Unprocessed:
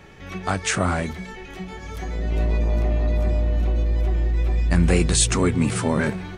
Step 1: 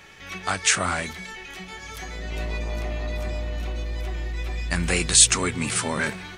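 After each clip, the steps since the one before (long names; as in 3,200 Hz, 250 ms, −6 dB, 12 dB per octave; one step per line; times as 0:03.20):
tilt shelving filter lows −7.5 dB
level −1.5 dB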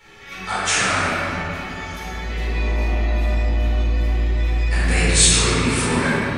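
convolution reverb RT60 3.2 s, pre-delay 4 ms, DRR −12 dB
level −9 dB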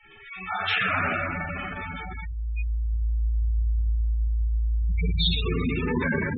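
transistor ladder low-pass 4,400 Hz, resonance 35%
delay that swaps between a low-pass and a high-pass 186 ms, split 970 Hz, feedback 86%, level −12 dB
gate on every frequency bin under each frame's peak −10 dB strong
level +3 dB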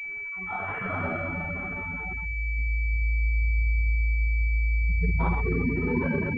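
switching amplifier with a slow clock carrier 2,300 Hz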